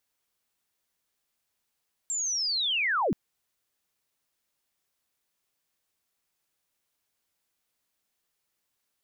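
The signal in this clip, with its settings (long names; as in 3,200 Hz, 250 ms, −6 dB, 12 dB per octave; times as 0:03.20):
glide linear 7,500 Hz → 140 Hz −27.5 dBFS → −22.5 dBFS 1.03 s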